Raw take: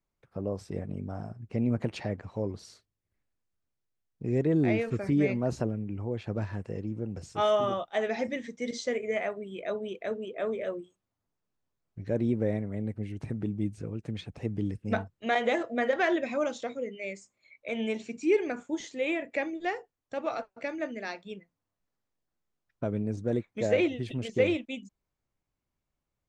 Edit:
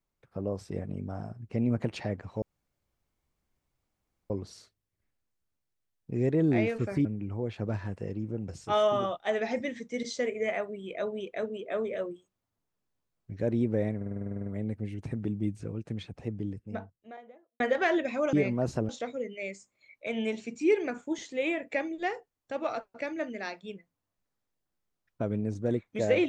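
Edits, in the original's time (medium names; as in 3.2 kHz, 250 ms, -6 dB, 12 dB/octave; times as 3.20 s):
2.42 s: insert room tone 1.88 s
5.17–5.73 s: move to 16.51 s
12.64 s: stutter 0.05 s, 11 plays
13.87–15.78 s: studio fade out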